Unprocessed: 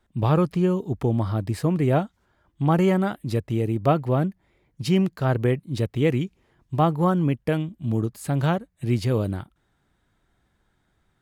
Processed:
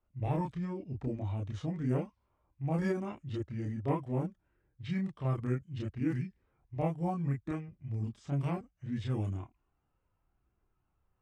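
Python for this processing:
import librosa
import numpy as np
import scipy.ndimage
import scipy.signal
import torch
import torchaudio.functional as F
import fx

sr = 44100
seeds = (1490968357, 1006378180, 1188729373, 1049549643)

y = fx.chorus_voices(x, sr, voices=6, hz=0.22, base_ms=30, depth_ms=2.0, mix_pct=50)
y = fx.formant_shift(y, sr, semitones=-5)
y = fx.env_lowpass(y, sr, base_hz=2200.0, full_db=-18.5)
y = y * librosa.db_to_amplitude(-8.5)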